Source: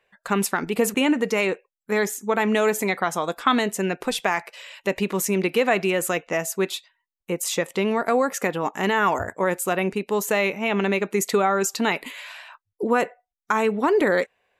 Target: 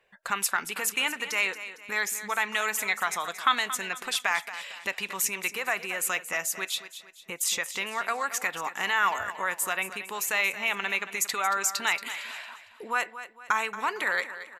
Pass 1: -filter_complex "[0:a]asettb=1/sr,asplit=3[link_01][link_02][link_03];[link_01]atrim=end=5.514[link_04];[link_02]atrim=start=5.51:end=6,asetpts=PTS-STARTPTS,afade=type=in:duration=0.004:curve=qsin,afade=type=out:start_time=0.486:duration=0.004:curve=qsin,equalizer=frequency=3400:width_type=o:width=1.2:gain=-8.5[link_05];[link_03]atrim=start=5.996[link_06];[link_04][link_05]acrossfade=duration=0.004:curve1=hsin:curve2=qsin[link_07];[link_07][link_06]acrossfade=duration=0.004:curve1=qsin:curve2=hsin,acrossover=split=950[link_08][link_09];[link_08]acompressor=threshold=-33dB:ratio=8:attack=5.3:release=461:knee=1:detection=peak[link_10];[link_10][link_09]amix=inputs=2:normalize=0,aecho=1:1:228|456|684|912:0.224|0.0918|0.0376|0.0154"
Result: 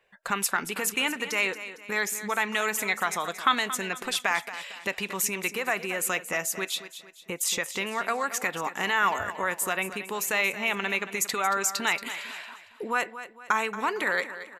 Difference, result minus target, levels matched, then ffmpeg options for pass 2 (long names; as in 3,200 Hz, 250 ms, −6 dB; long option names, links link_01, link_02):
downward compressor: peak gain reduction −8.5 dB
-filter_complex "[0:a]asettb=1/sr,asplit=3[link_01][link_02][link_03];[link_01]atrim=end=5.514[link_04];[link_02]atrim=start=5.51:end=6,asetpts=PTS-STARTPTS,afade=type=in:duration=0.004:curve=qsin,afade=type=out:start_time=0.486:duration=0.004:curve=qsin,equalizer=frequency=3400:width_type=o:width=1.2:gain=-8.5[link_05];[link_03]atrim=start=5.996[link_06];[link_04][link_05]acrossfade=duration=0.004:curve1=hsin:curve2=qsin[link_07];[link_07][link_06]acrossfade=duration=0.004:curve1=qsin:curve2=hsin,acrossover=split=950[link_08][link_09];[link_08]acompressor=threshold=-42.5dB:ratio=8:attack=5.3:release=461:knee=1:detection=peak[link_10];[link_10][link_09]amix=inputs=2:normalize=0,aecho=1:1:228|456|684|912:0.224|0.0918|0.0376|0.0154"